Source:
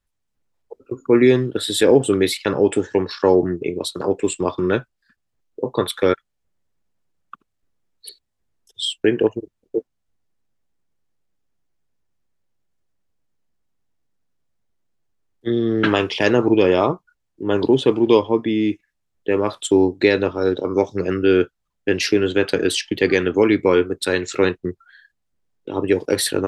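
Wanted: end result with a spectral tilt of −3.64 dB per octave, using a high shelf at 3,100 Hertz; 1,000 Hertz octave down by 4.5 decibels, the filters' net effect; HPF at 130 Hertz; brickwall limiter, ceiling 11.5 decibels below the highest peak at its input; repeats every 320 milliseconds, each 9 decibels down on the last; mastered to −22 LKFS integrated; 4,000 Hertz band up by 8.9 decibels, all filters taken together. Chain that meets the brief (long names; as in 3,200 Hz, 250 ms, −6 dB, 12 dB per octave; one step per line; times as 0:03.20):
high-pass filter 130 Hz
parametric band 1,000 Hz −7 dB
high-shelf EQ 3,100 Hz +5 dB
parametric band 4,000 Hz +7.5 dB
brickwall limiter −12 dBFS
repeating echo 320 ms, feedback 35%, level −9 dB
level +1 dB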